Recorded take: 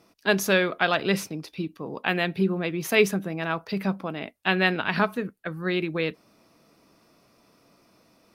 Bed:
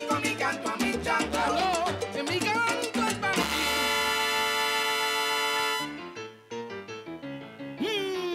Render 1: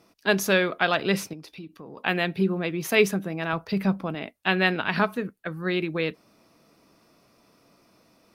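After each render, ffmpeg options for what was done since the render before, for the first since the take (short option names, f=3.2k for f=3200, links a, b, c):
-filter_complex "[0:a]asettb=1/sr,asplit=3[a][b][c];[a]atrim=end=1.334[d];[b]atrim=start=1.33:end=1.98,asetpts=PTS-STARTPTS,afade=t=in:d=0.004:c=qsin,afade=t=out:st=0.646:d=0.004:c=qsin,acompressor=threshold=-41dB:ratio=2.5:attack=3.2:release=140:knee=1:detection=peak[e];[c]atrim=start=1.976[f];[d][e]acrossfade=d=0.004:c1=hsin:c2=qsin[g];[g][f]acrossfade=d=0.004:c1=qsin:c2=hsin,asettb=1/sr,asplit=3[h][i][j];[h]atrim=end=3.534[k];[i]atrim=start=3.53:end=4.15,asetpts=PTS-STARTPTS,afade=t=in:d=0.004:c=qsin,afade=t=out:st=0.616:d=0.004:c=qsin,lowshelf=f=120:g=11.5[l];[j]atrim=start=4.146[m];[k][l]acrossfade=d=0.004:c1=hsin:c2=qsin[n];[n][m]acrossfade=d=0.004:c1=qsin:c2=hsin"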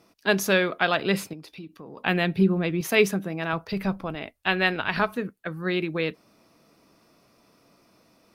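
-filter_complex "[0:a]asettb=1/sr,asplit=3[a][b][c];[a]atrim=end=0.904[d];[b]atrim=start=0.9:end=1.46,asetpts=PTS-STARTPTS,afade=t=in:d=0.004:c=qsin,afade=t=out:st=0.556:d=0.004:c=qsin,bandreject=f=5.8k:w=5.5[e];[c]atrim=start=1.456[f];[d][e]acrossfade=d=0.004:c1=hsin:c2=qsin[g];[g][f]acrossfade=d=0.004:c1=qsin:c2=hsin,asettb=1/sr,asplit=3[h][i][j];[h]atrim=end=2.014[k];[i]atrim=start=2.01:end=2.81,asetpts=PTS-STARTPTS,afade=t=in:d=0.004:c=qsin,afade=t=out:st=0.796:d=0.004:c=qsin,lowshelf=f=150:g=11[l];[j]atrim=start=2.806[m];[k][l]acrossfade=d=0.004:c1=hsin:c2=qsin[n];[n][m]acrossfade=d=0.004:c1=qsin:c2=hsin,asplit=3[o][p][q];[o]afade=t=out:st=3.71:d=0.02[r];[p]asubboost=boost=7.5:cutoff=69,afade=t=in:st=3.71:d=0.02,afade=t=out:st=5.12:d=0.02[s];[q]afade=t=in:st=5.12:d=0.02[t];[r][s][t]amix=inputs=3:normalize=0"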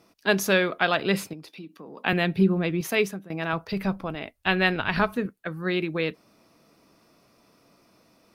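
-filter_complex "[0:a]asettb=1/sr,asplit=3[a][b][c];[a]atrim=end=1.494[d];[b]atrim=start=1.49:end=2.13,asetpts=PTS-STARTPTS,afade=t=in:d=0.004:c=qsin,afade=t=out:st=0.636:d=0.004:c=qsin,highpass=f=160:w=0.5412,highpass=f=160:w=1.3066[e];[c]atrim=start=2.126[f];[d][e]acrossfade=d=0.004:c1=hsin:c2=qsin[g];[g][f]acrossfade=d=0.004:c1=qsin:c2=hsin,asettb=1/sr,asplit=3[h][i][j];[h]atrim=end=4.384[k];[i]atrim=start=4.38:end=5.26,asetpts=PTS-STARTPTS,afade=t=in:d=0.004:c=qsin,afade=t=out:st=0.876:d=0.004:c=qsin,lowshelf=f=150:g=9[l];[j]atrim=start=5.256[m];[k][l]acrossfade=d=0.004:c1=hsin:c2=qsin[n];[n][m]acrossfade=d=0.004:c1=qsin:c2=hsin,asplit=2[o][p];[o]atrim=end=3.3,asetpts=PTS-STARTPTS,afade=t=out:st=2.77:d=0.53:silence=0.158489[q];[p]atrim=start=3.3,asetpts=PTS-STARTPTS,afade=t=in:d=0.004:c=hsin:silence=0.158489[r];[q][r]concat=n=2:v=0:a=1"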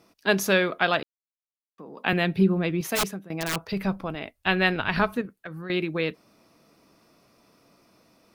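-filter_complex "[0:a]asplit=3[a][b][c];[a]afade=t=out:st=2.95:d=0.02[d];[b]aeval=exprs='(mod(8.91*val(0)+1,2)-1)/8.91':c=same,afade=t=in:st=2.95:d=0.02,afade=t=out:st=3.61:d=0.02[e];[c]afade=t=in:st=3.61:d=0.02[f];[d][e][f]amix=inputs=3:normalize=0,asettb=1/sr,asplit=3[g][h][i];[g]atrim=end=5.214[j];[h]atrim=start=5.21:end=5.7,asetpts=PTS-STARTPTS,afade=t=in:d=0.004:c=qsin,afade=t=out:st=0.486:d=0.004:c=qsin,acompressor=threshold=-33dB:ratio=6:attack=3.2:release=140:knee=1:detection=peak[k];[i]atrim=start=5.696[l];[j][k]acrossfade=d=0.004:c1=hsin:c2=qsin[m];[m][l]acrossfade=d=0.004:c1=qsin:c2=hsin,asplit=3[n][o][p];[n]atrim=end=1.03,asetpts=PTS-STARTPTS,afade=t=out:st=1.026:d=0.004:c=hsin[q];[o]atrim=start=1.03:end=1.78,asetpts=PTS-STARTPTS,volume=0[r];[p]atrim=start=1.78,asetpts=PTS-STARTPTS,afade=t=in:d=0.004:c=hsin[s];[q][r][s]concat=n=3:v=0:a=1"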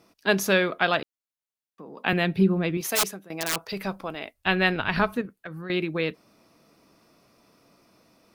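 -filter_complex "[0:a]asettb=1/sr,asplit=3[a][b][c];[a]atrim=end=2.774[d];[b]atrim=start=2.77:end=4.34,asetpts=PTS-STARTPTS,afade=t=in:d=0.004:c=qsin,afade=t=out:st=1.566:d=0.004:c=qsin,bass=f=250:g=-9,treble=f=4k:g=5[e];[c]atrim=start=4.336[f];[d][e]acrossfade=d=0.004:c1=hsin:c2=qsin[g];[g][f]acrossfade=d=0.004:c1=qsin:c2=hsin"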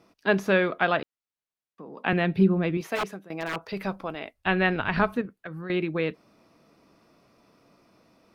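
-filter_complex "[0:a]acrossover=split=3000[a][b];[b]acompressor=threshold=-39dB:ratio=4:attack=1:release=60[c];[a][c]amix=inputs=2:normalize=0,aemphasis=mode=reproduction:type=cd"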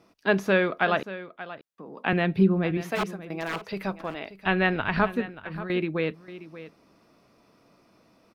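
-af "aecho=1:1:582:0.178"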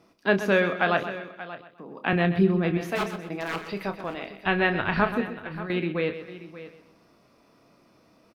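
-filter_complex "[0:a]asplit=2[a][b];[b]adelay=29,volume=-10dB[c];[a][c]amix=inputs=2:normalize=0,aecho=1:1:127|254|381|508:0.266|0.0931|0.0326|0.0114"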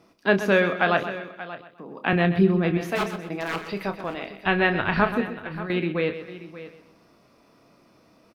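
-af "volume=2dB"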